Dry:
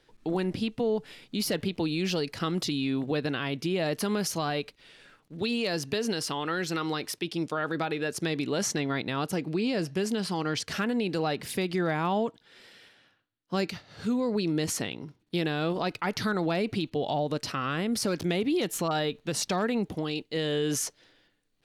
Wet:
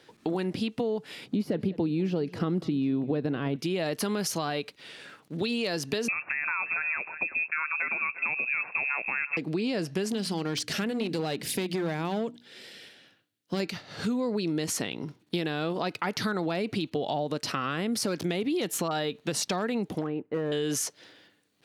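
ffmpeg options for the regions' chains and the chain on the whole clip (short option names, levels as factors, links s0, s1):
-filter_complex "[0:a]asettb=1/sr,asplit=3[s0][s1][s2];[s0]atrim=end=1.264[s3];[s1]atrim=start=1.26:end=3.56,asetpts=PTS-STARTPTS,afade=t=in:d=0.004:c=qsin,afade=t=out:st=2.296:d=0.004:c=qsin,acrossover=split=2900[s4][s5];[s5]acompressor=threshold=0.00891:ratio=4:attack=1:release=60[s6];[s4][s6]amix=inputs=2:normalize=0,tiltshelf=f=860:g=7.5,aecho=1:1:199:0.0944,atrim=end_sample=101430[s7];[s2]atrim=start=3.556[s8];[s3][s7]acrossfade=d=0.004:c1=hsin:c2=qsin[s9];[s9][s8]acrossfade=d=0.004:c1=qsin:c2=hsin,asettb=1/sr,asplit=3[s10][s11][s12];[s10]atrim=end=6.084[s13];[s11]atrim=start=6.08:end=9.37,asetpts=PTS-STARTPTS,afade=t=in:d=0.004:c=qsin,afade=t=out:st=3.286:d=0.004:c=qsin,aecho=1:1:353:0.133,atrim=end_sample=145089,lowpass=f=2400:t=q:w=0.5098,lowpass=f=2400:t=q:w=0.6013,lowpass=f=2400:t=q:w=0.9,lowpass=f=2400:t=q:w=2.563,afreqshift=-2800[s14];[s12]atrim=start=9.366[s15];[s13][s14]acrossfade=d=0.004:c1=hsin:c2=qsin[s16];[s16][s15]acrossfade=d=0.004:c1=qsin:c2=hsin,asettb=1/sr,asplit=3[s17][s18][s19];[s17]atrim=end=10.124[s20];[s18]atrim=start=10.12:end=13.6,asetpts=PTS-STARTPTS,afade=t=in:d=0.004:c=qsin,afade=t=out:st=3.476:d=0.004:c=qsin,equalizer=f=1100:t=o:w=1.3:g=-8.5,bandreject=f=60:t=h:w=6,bandreject=f=120:t=h:w=6,bandreject=f=180:t=h:w=6,bandreject=f=240:t=h:w=6,bandreject=f=300:t=h:w=6,aeval=exprs='clip(val(0),-1,0.0376)':c=same[s21];[s19]atrim=start=13.596[s22];[s20][s21]acrossfade=d=0.004:c1=hsin:c2=qsin[s23];[s23][s22]acrossfade=d=0.004:c1=qsin:c2=hsin,asettb=1/sr,asplit=3[s24][s25][s26];[s24]atrim=end=20.014[s27];[s25]atrim=start=20.01:end=20.52,asetpts=PTS-STARTPTS,afade=t=in:d=0.004:c=qsin,afade=t=out:st=0.506:d=0.004:c=qsin,lowpass=f=1600:w=0.5412,lowpass=f=1600:w=1.3066,volume=18.8,asoftclip=hard,volume=0.0531[s28];[s26]atrim=start=20.516[s29];[s27][s28]acrossfade=d=0.004:c1=hsin:c2=qsin[s30];[s30][s29]acrossfade=d=0.004:c1=qsin:c2=hsin,highpass=130,acompressor=threshold=0.0141:ratio=3,volume=2.51"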